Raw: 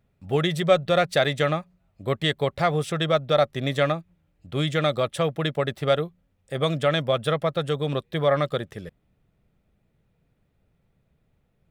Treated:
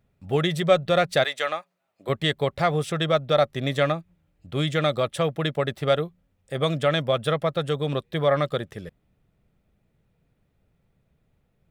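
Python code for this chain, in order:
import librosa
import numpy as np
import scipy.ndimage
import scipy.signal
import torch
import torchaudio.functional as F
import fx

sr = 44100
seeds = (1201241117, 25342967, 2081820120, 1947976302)

y = fx.highpass(x, sr, hz=fx.line((1.23, 820.0), (2.08, 380.0)), slope=12, at=(1.23, 2.08), fade=0.02)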